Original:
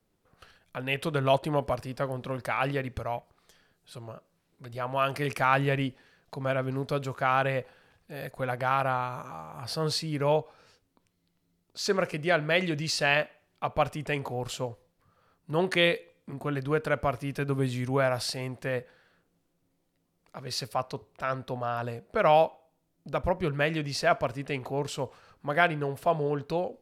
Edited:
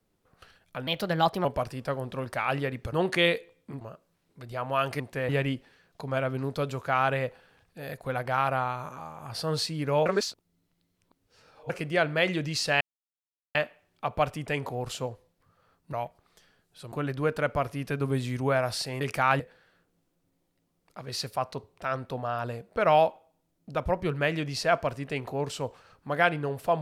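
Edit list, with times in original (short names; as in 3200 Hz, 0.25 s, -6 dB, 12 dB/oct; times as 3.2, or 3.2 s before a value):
0.87–1.57 speed 121%
3.05–4.04 swap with 15.52–16.4
5.23–5.62 swap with 18.49–18.78
10.39–12.03 reverse
13.14 insert silence 0.74 s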